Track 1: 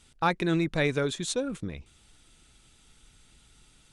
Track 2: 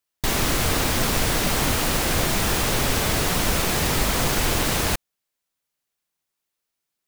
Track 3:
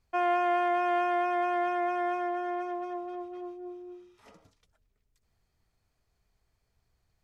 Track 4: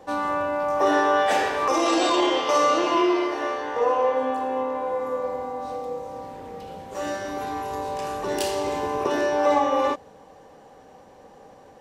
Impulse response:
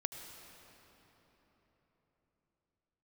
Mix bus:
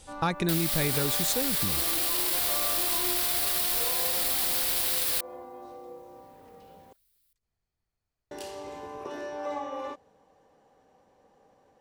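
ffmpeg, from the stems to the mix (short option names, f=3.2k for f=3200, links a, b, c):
-filter_complex "[0:a]bass=f=250:g=6,treble=f=4k:g=7,volume=2dB[a];[1:a]tiltshelf=f=1.1k:g=-9.5,alimiter=limit=-14.5dB:level=0:latency=1,aexciter=amount=1.5:drive=3.7:freq=3.6k,adelay=250,volume=-4.5dB[b];[2:a]adelay=2200,volume=-10.5dB[c];[3:a]volume=-14dB,asplit=3[d][e][f];[d]atrim=end=6.93,asetpts=PTS-STARTPTS,afade=t=out:st=6.926:d=0.004:c=hsin[g];[e]atrim=start=6.93:end=8.31,asetpts=PTS-STARTPTS,volume=0[h];[f]atrim=start=8.31,asetpts=PTS-STARTPTS,afade=t=in:d=0.004:c=hsin[i];[g][h][i]concat=n=3:v=0:a=1[j];[a][b][c][j]amix=inputs=4:normalize=0,acompressor=threshold=-25dB:ratio=3"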